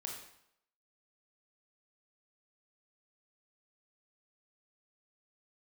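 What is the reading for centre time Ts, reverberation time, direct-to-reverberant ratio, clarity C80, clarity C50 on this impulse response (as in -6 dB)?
40 ms, 0.75 s, -0.5 dB, 7.0 dB, 3.5 dB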